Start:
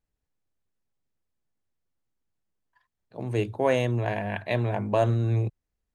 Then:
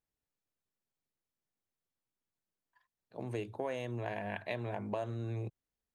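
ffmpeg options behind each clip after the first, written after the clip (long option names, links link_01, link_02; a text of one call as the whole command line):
ffmpeg -i in.wav -af "lowshelf=frequency=100:gain=-11.5,acompressor=threshold=-29dB:ratio=6,volume=-5dB" out.wav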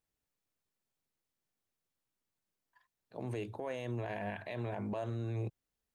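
ffmpeg -i in.wav -af "alimiter=level_in=8.5dB:limit=-24dB:level=0:latency=1:release=32,volume=-8.5dB,volume=2.5dB" out.wav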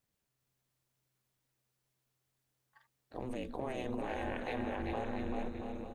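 ffmpeg -i in.wav -filter_complex "[0:a]acompressor=threshold=-39dB:ratio=6,aeval=exprs='val(0)*sin(2*PI*130*n/s)':channel_layout=same,asplit=2[link_01][link_02];[link_02]aecho=0:1:390|682.5|901.9|1066|1190:0.631|0.398|0.251|0.158|0.1[link_03];[link_01][link_03]amix=inputs=2:normalize=0,volume=6.5dB" out.wav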